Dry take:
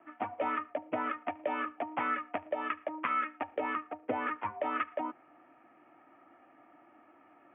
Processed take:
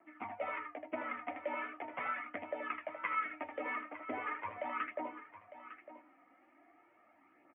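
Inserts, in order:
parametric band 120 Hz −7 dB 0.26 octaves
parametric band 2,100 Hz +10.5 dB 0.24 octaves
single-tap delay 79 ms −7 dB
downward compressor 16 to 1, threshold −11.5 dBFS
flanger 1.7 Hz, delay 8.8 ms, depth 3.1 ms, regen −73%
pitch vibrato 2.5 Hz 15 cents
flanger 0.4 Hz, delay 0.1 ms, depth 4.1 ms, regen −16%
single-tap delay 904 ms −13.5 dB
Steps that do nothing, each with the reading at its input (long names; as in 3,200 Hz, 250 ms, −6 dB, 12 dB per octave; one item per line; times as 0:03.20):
downward compressor, threshold −11.5 dBFS: peak of its input −13.5 dBFS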